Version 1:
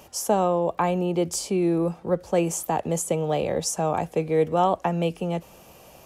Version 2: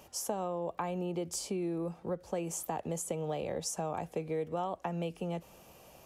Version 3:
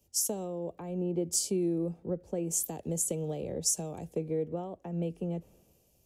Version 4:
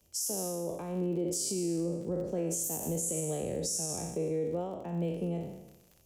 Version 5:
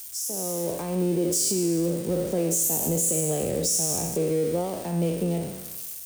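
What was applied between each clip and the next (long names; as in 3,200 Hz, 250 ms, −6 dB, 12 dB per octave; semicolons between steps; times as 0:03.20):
downward compressor 4 to 1, threshold −25 dBFS, peak gain reduction 8.5 dB; level −7 dB
drawn EQ curve 410 Hz 0 dB, 1,100 Hz −16 dB, 7,000 Hz +1 dB; multiband upward and downward expander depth 70%; level +4 dB
peak hold with a decay on every bin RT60 0.94 s; surface crackle 57 per second −45 dBFS; brickwall limiter −24 dBFS, peak gain reduction 11 dB
spike at every zero crossing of −34.5 dBFS; automatic gain control gain up to 7.5 dB; steady tone 8,700 Hz −47 dBFS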